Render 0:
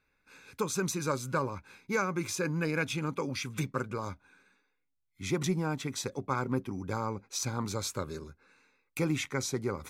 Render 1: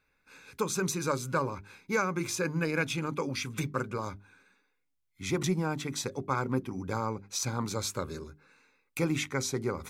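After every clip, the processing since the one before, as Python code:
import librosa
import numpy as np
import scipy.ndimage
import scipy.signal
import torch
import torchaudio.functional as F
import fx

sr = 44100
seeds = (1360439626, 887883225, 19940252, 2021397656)

y = fx.hum_notches(x, sr, base_hz=50, count=8)
y = y * librosa.db_to_amplitude(1.5)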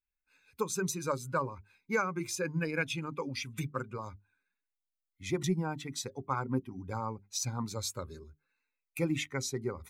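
y = fx.bin_expand(x, sr, power=1.5)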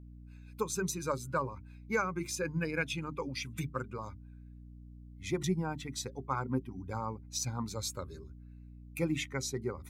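y = fx.add_hum(x, sr, base_hz=60, snr_db=13)
y = y * librosa.db_to_amplitude(-1.0)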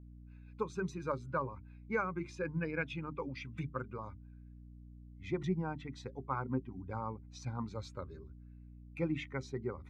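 y = scipy.signal.sosfilt(scipy.signal.butter(2, 2400.0, 'lowpass', fs=sr, output='sos'), x)
y = y * librosa.db_to_amplitude(-2.5)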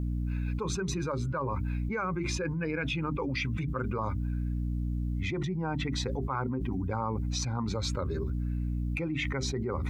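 y = fx.env_flatten(x, sr, amount_pct=100)
y = y * librosa.db_to_amplitude(-2.0)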